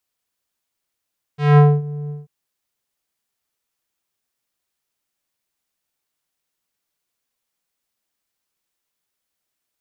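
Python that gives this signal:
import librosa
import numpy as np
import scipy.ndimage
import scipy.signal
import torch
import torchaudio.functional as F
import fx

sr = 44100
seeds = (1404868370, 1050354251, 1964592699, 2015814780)

y = fx.sub_voice(sr, note=50, wave='square', cutoff_hz=360.0, q=0.95, env_oct=3.5, env_s=0.41, attack_ms=197.0, decay_s=0.24, sustain_db=-19.0, release_s=0.17, note_s=0.72, slope=12)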